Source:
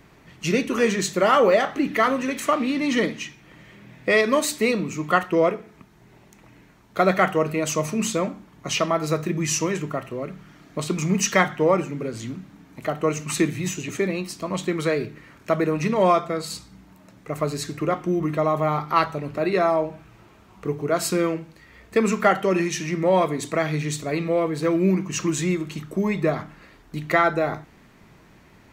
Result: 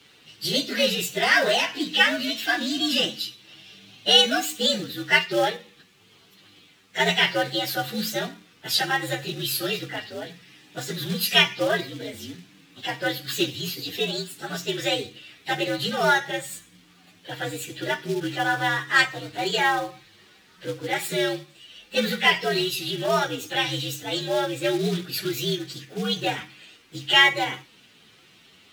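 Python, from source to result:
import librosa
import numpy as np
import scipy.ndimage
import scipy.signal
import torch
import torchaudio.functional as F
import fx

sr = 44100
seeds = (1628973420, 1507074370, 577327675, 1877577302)

y = fx.partial_stretch(x, sr, pct=121)
y = fx.highpass(y, sr, hz=42.0, slope=6)
y = fx.quant_companded(y, sr, bits=6)
y = fx.weighting(y, sr, curve='D')
y = F.gain(torch.from_numpy(y), -1.5).numpy()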